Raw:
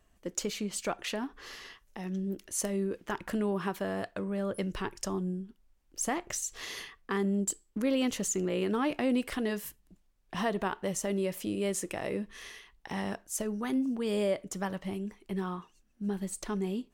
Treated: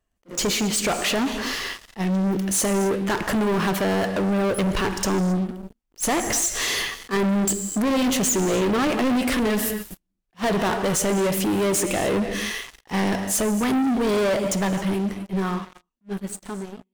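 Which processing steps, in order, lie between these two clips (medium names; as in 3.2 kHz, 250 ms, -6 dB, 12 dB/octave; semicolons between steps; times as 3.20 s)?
fade out at the end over 2.73 s; gated-style reverb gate 300 ms flat, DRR 11.5 dB; waveshaping leveller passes 5; attacks held to a fixed rise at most 450 dB/s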